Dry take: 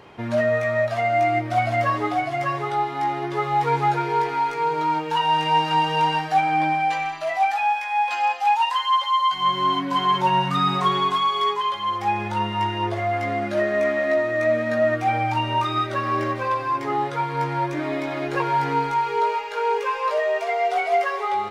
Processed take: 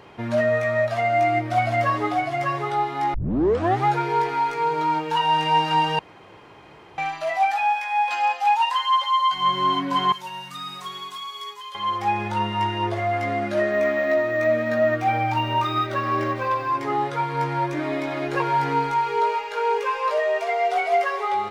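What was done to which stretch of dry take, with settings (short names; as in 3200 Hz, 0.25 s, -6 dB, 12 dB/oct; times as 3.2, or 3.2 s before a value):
3.14 tape start 0.71 s
5.99–6.98 room tone
10.12–11.75 pre-emphasis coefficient 0.9
13.71–16.73 decimation joined by straight lines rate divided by 2×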